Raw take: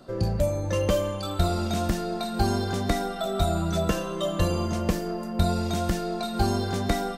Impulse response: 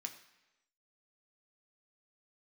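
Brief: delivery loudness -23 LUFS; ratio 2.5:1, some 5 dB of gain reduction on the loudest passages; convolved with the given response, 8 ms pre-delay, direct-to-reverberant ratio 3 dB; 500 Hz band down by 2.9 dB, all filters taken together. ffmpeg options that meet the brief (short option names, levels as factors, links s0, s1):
-filter_complex "[0:a]equalizer=f=500:t=o:g=-4,acompressor=threshold=0.0501:ratio=2.5,asplit=2[s0][s1];[1:a]atrim=start_sample=2205,adelay=8[s2];[s1][s2]afir=irnorm=-1:irlink=0,volume=0.944[s3];[s0][s3]amix=inputs=2:normalize=0,volume=2.37"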